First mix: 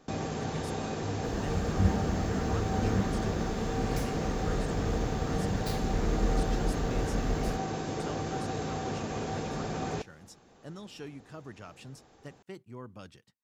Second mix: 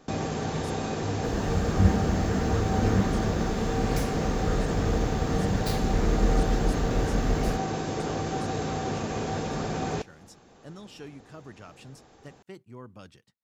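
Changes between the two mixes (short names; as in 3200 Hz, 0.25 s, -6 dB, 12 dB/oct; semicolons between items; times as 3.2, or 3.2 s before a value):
first sound +4.0 dB; second sound +5.0 dB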